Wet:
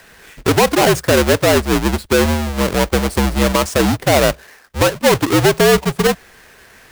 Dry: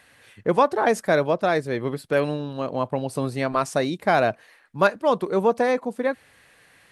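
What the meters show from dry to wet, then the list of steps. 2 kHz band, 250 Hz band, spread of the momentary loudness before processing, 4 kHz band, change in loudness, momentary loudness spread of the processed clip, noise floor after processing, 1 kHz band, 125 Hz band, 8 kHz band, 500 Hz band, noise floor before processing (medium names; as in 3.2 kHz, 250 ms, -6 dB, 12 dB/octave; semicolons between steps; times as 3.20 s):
+9.0 dB, +10.0 dB, 8 LU, +17.0 dB, +8.5 dB, 5 LU, -46 dBFS, +4.5 dB, +12.5 dB, +19.0 dB, +7.0 dB, -57 dBFS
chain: square wave that keeps the level; frequency shift -66 Hz; loudness maximiser +7.5 dB; trim -1 dB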